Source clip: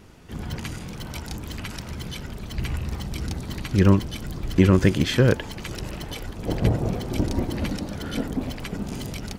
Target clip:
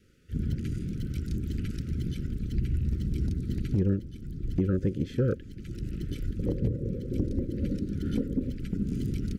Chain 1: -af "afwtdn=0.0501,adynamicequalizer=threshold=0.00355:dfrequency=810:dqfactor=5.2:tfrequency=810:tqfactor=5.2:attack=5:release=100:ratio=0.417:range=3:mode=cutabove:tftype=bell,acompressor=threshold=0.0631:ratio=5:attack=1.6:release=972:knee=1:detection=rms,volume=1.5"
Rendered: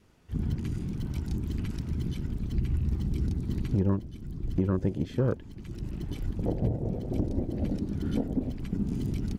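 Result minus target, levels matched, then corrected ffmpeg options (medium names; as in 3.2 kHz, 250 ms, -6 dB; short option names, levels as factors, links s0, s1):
1 kHz band +9.5 dB
-af "afwtdn=0.0501,adynamicequalizer=threshold=0.00355:dfrequency=810:dqfactor=5.2:tfrequency=810:tqfactor=5.2:attack=5:release=100:ratio=0.417:range=3:mode=cutabove:tftype=bell,asuperstop=centerf=850:order=20:qfactor=1.2,acompressor=threshold=0.0631:ratio=5:attack=1.6:release=972:knee=1:detection=rms,volume=1.5"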